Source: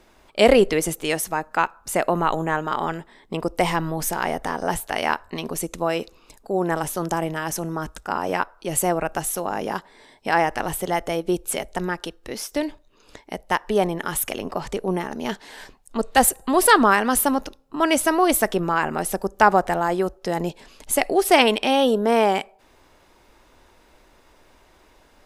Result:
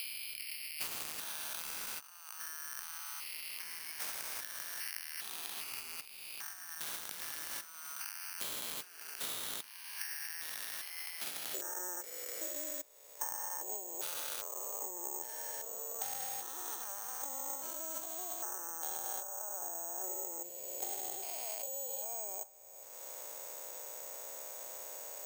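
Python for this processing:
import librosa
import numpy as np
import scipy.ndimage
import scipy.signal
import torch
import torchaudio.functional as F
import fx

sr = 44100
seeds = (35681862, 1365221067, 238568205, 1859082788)

y = fx.spec_steps(x, sr, hold_ms=400)
y = fx.noise_reduce_blind(y, sr, reduce_db=10)
y = fx.over_compress(y, sr, threshold_db=-34.0, ratio=-1.0)
y = fx.ladder_highpass(y, sr, hz=fx.steps((0.0, 2200.0), (11.53, 480.0)), resonance_pct=60)
y = (np.kron(y[::6], np.eye(6)[0]) * 6)[:len(y)]
y = fx.band_squash(y, sr, depth_pct=100)
y = y * librosa.db_to_amplitude(-4.0)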